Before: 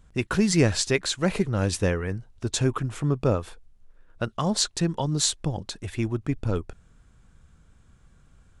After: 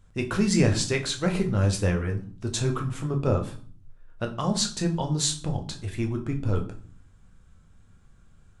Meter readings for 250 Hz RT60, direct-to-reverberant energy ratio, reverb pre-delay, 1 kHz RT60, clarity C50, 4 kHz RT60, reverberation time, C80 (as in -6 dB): 0.70 s, 3.0 dB, 8 ms, 0.45 s, 12.0 dB, 0.35 s, 0.45 s, 17.0 dB